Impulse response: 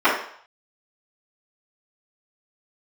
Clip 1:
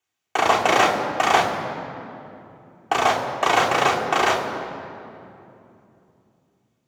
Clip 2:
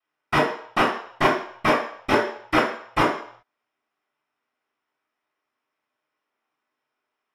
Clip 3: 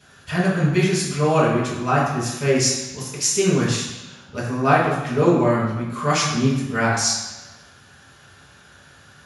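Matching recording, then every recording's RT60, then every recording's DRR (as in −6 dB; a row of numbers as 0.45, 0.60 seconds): 2; 2.9, 0.60, 1.1 seconds; −2.5, −15.5, −7.0 decibels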